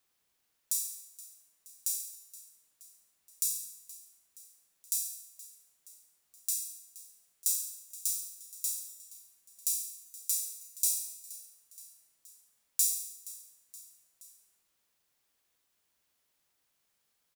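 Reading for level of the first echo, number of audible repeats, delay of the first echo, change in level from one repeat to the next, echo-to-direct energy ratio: −18.0 dB, 3, 473 ms, −4.5 dB, −16.5 dB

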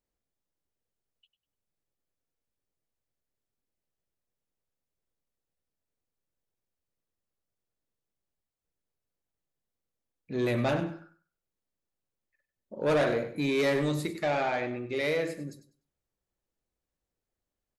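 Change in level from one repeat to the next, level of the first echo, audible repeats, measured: −13.0 dB, −12.5 dB, 2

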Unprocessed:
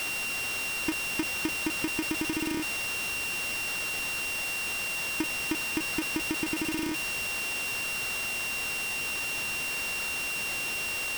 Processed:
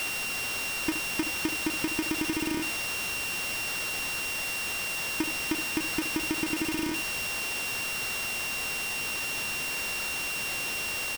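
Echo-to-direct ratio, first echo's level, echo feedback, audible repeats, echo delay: −12.0 dB, −12.0 dB, 16%, 1, 72 ms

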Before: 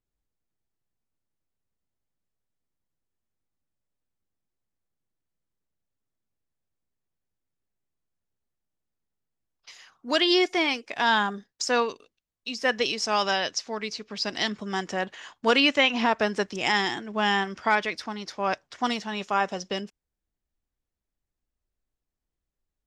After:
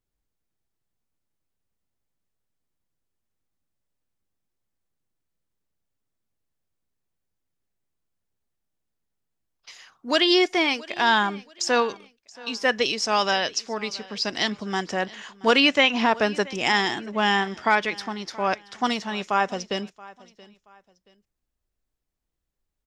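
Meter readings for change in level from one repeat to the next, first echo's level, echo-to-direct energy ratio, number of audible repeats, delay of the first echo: −10.0 dB, −21.5 dB, −21.0 dB, 2, 677 ms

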